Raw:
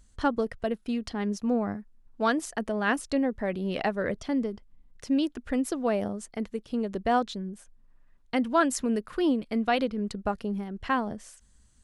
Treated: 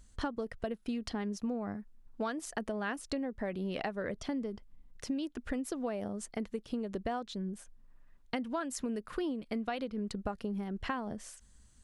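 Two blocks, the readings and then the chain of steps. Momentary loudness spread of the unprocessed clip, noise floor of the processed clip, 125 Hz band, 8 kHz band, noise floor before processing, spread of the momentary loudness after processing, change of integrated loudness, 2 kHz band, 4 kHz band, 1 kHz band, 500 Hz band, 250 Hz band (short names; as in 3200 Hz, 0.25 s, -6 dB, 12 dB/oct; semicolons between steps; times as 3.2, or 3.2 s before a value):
9 LU, -61 dBFS, -5.5 dB, -6.0 dB, -59 dBFS, 6 LU, -8.5 dB, -9.5 dB, -7.0 dB, -10.5 dB, -8.5 dB, -8.0 dB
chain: compressor 12:1, threshold -32 dBFS, peak gain reduction 15 dB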